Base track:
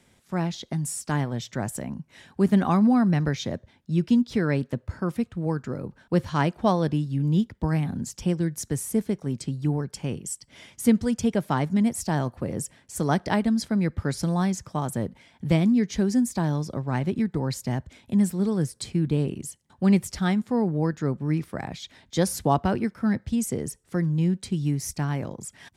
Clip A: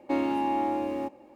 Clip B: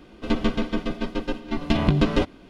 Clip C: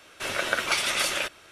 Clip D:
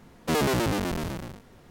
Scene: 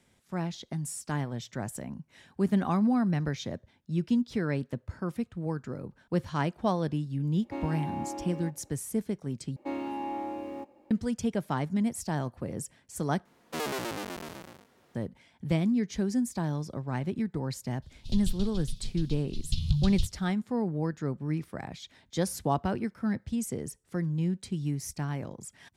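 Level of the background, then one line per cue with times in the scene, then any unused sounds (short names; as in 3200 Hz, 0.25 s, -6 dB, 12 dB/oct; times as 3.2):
base track -6 dB
7.42 add A -9.5 dB
9.56 replace with A -7.5 dB
13.25 replace with D -6.5 dB + HPF 370 Hz 6 dB/oct
17.82 add B -1 dB + elliptic band-stop 130–3900 Hz
not used: C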